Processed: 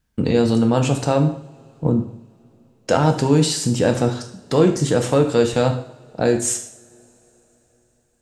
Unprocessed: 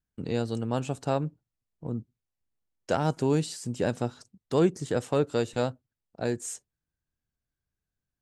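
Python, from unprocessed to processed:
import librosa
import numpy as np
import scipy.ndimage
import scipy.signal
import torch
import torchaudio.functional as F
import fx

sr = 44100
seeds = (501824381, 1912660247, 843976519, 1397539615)

p1 = fx.high_shelf(x, sr, hz=9500.0, db=-6.5)
p2 = fx.over_compress(p1, sr, threshold_db=-34.0, ratio=-1.0)
p3 = p1 + F.gain(torch.from_numpy(p2), 0.5).numpy()
p4 = fx.rev_double_slope(p3, sr, seeds[0], early_s=0.58, late_s=4.3, knee_db=-28, drr_db=4.0)
y = F.gain(torch.from_numpy(p4), 6.0).numpy()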